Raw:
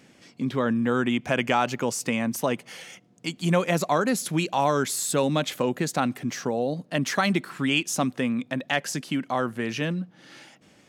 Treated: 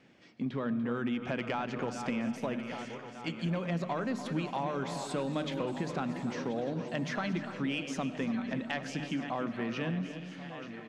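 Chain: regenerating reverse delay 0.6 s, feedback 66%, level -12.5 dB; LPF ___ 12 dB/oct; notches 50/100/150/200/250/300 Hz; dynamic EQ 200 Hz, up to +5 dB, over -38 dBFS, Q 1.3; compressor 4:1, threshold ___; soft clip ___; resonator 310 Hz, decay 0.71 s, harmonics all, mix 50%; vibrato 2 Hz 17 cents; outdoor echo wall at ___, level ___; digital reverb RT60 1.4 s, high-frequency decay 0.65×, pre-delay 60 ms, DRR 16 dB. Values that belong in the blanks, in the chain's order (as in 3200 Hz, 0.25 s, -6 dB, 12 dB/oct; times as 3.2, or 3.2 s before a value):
3800 Hz, -24 dBFS, -15 dBFS, 50 m, -11 dB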